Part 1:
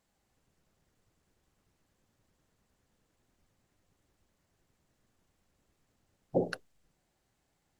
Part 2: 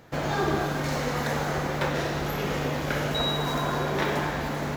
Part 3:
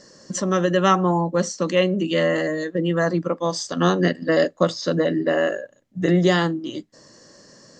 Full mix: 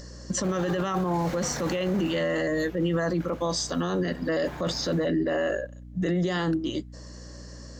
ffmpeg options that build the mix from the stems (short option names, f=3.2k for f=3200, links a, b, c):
-filter_complex "[0:a]volume=-10dB[a];[1:a]highshelf=f=11k:g=4,adelay=300,volume=1dB,afade=t=out:st=1.89:d=0.55:silence=0.223872,afade=t=in:st=4.32:d=0.22:silence=0.421697[b];[2:a]volume=0.5dB[c];[a][b][c]amix=inputs=3:normalize=0,acompressor=mode=upward:threshold=-47dB:ratio=2.5,aeval=exprs='val(0)+0.00794*(sin(2*PI*60*n/s)+sin(2*PI*2*60*n/s)/2+sin(2*PI*3*60*n/s)/3+sin(2*PI*4*60*n/s)/4+sin(2*PI*5*60*n/s)/5)':c=same,alimiter=limit=-19dB:level=0:latency=1:release=11"